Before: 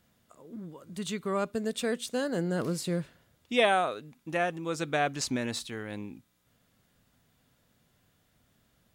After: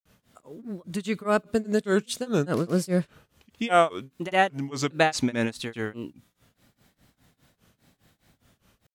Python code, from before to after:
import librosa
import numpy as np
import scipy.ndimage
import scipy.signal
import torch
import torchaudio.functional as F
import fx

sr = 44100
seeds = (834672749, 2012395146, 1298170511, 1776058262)

y = fx.granulator(x, sr, seeds[0], grain_ms=238.0, per_s=4.9, spray_ms=100.0, spread_st=3)
y = y * 10.0 ** (9.0 / 20.0)